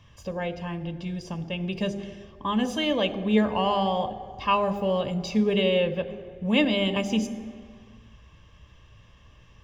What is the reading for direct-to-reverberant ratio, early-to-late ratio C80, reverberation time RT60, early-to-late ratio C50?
12.0 dB, 15.0 dB, no single decay rate, 14.0 dB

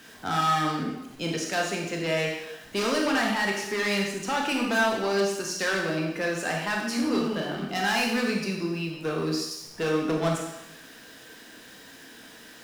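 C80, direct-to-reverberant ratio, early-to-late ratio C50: 5.5 dB, -0.5 dB, 3.0 dB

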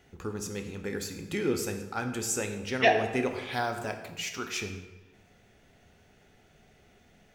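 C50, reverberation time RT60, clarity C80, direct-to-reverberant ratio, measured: 8.0 dB, 1.1 s, 9.5 dB, 5.0 dB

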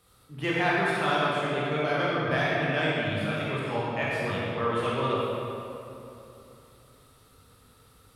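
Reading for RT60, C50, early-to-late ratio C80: 2.9 s, -4.0 dB, -2.0 dB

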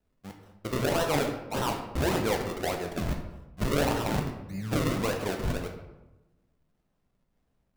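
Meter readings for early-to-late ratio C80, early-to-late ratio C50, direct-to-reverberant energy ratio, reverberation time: 9.0 dB, 6.5 dB, 3.0 dB, 1.0 s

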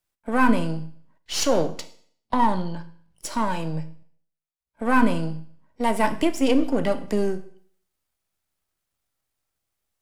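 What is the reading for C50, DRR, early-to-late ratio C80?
14.5 dB, 10.5 dB, 18.0 dB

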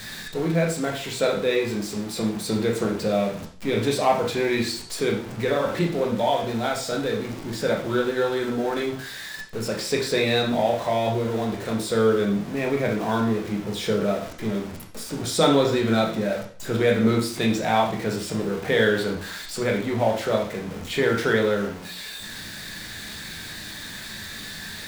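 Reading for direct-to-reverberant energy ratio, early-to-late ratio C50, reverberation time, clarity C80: -0.5 dB, 7.0 dB, 0.50 s, 11.5 dB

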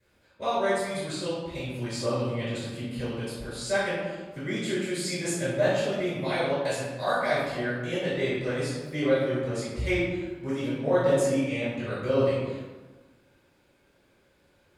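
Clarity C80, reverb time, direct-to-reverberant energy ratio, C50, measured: 1.0 dB, 1.3 s, -16.0 dB, -1.5 dB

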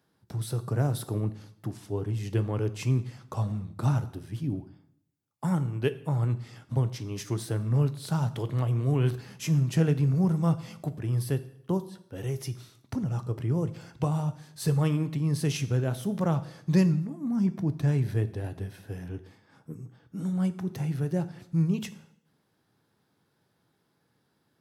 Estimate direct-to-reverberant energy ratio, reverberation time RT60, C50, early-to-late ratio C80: 11.0 dB, 0.65 s, 15.5 dB, 18.5 dB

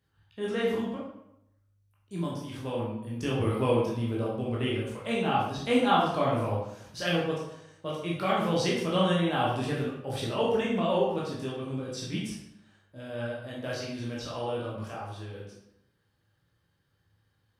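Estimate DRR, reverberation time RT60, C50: -6.0 dB, 0.80 s, 1.5 dB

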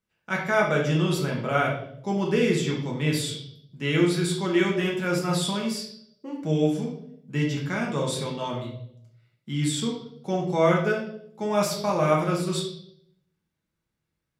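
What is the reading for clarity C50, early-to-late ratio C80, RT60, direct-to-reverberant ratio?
4.5 dB, 8.5 dB, 0.70 s, -3.0 dB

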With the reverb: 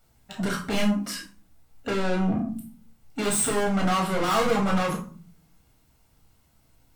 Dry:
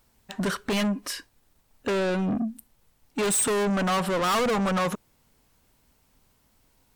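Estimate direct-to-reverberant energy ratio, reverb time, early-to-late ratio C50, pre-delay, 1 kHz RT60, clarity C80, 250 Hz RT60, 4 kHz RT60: -1.5 dB, 0.45 s, 9.0 dB, 4 ms, 0.40 s, 15.0 dB, 0.80 s, 0.25 s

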